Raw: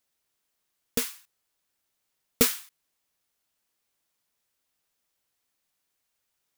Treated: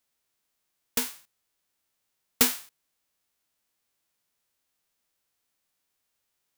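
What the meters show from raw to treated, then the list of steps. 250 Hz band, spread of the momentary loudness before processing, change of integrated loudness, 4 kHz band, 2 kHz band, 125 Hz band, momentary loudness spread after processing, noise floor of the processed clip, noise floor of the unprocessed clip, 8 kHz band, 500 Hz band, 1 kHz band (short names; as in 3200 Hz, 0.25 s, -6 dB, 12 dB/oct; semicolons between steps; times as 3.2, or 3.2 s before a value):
-2.0 dB, 11 LU, +1.0 dB, +1.0 dB, +1.0 dB, -7.5 dB, 12 LU, -79 dBFS, -79 dBFS, +1.0 dB, -6.0 dB, +3.0 dB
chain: spectral whitening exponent 0.3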